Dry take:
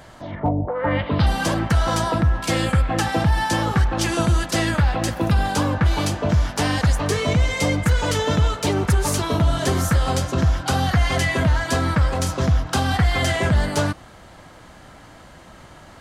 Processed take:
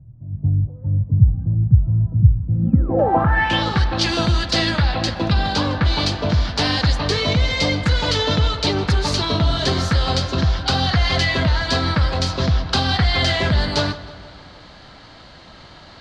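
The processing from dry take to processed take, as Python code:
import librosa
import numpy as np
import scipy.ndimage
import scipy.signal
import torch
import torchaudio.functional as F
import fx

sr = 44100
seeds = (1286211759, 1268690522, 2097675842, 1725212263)

p1 = fx.spec_paint(x, sr, seeds[0], shape='fall', start_s=2.53, length_s=0.66, low_hz=250.0, high_hz=6300.0, level_db=-27.0)
p2 = fx.high_shelf(p1, sr, hz=12000.0, db=-12.0, at=(5.07, 5.64))
p3 = p2 + fx.echo_filtered(p2, sr, ms=158, feedback_pct=63, hz=3900.0, wet_db=-16, dry=0)
y = fx.filter_sweep_lowpass(p3, sr, from_hz=120.0, to_hz=4300.0, start_s=2.53, end_s=3.64, q=4.1)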